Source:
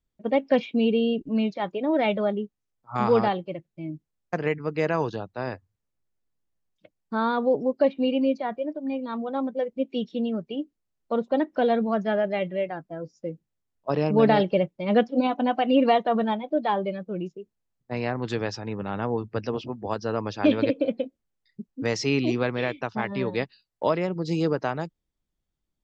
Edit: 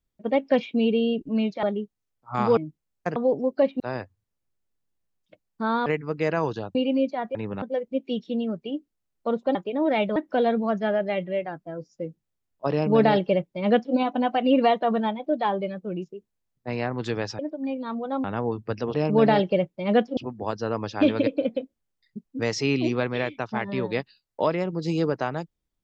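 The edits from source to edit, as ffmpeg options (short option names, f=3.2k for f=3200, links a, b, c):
-filter_complex "[0:a]asplit=15[a][b][c][d][e][f][g][h][i][j][k][l][m][n][o];[a]atrim=end=1.632[p];[b]atrim=start=2.238:end=3.182[q];[c]atrim=start=3.838:end=4.432[r];[d]atrim=start=7.378:end=8.022[s];[e]atrim=start=5.318:end=7.382[t];[f]atrim=start=4.428:end=5.322[u];[g]atrim=start=8.018:end=8.622[v];[h]atrim=start=18.628:end=18.902[w];[i]atrim=start=9.468:end=11.402[x];[j]atrim=start=1.628:end=2.242[y];[k]atrim=start=11.398:end=18.632[z];[l]atrim=start=8.618:end=9.472[aa];[m]atrim=start=18.898:end=19.602[ab];[n]atrim=start=13.948:end=15.182[ac];[o]atrim=start=19.598[ad];[p][q]acrossfade=d=0.004:c1=hsin:c2=hsin[ae];[ae][r]acrossfade=d=0.004:c1=hsin:c2=hsin[af];[af][s]acrossfade=d=0.004:c1=hsin:c2=hsin[ag];[ag][t]acrossfade=d=0.004:c1=hsin:c2=hsin[ah];[ah][u]acrossfade=d=0.004:c1=hsin:c2=hsin[ai];[ai][v]acrossfade=d=0.004:c1=hsin:c2=hsin[aj];[aj][w]acrossfade=d=0.004:c1=hsin:c2=hsin[ak];[ak][x]acrossfade=d=0.004:c1=hsin:c2=hsin[al];[al][y]acrossfade=d=0.004:c1=hsin:c2=hsin[am];[am][z]acrossfade=d=0.004:c1=hsin:c2=hsin[an];[an][aa]acrossfade=d=0.004:c1=hsin:c2=hsin[ao];[ao][ab]acrossfade=d=0.004:c1=hsin:c2=hsin[ap];[ap][ac]acrossfade=d=0.004:c1=hsin:c2=hsin[aq];[aq][ad]acrossfade=d=0.004:c1=hsin:c2=hsin"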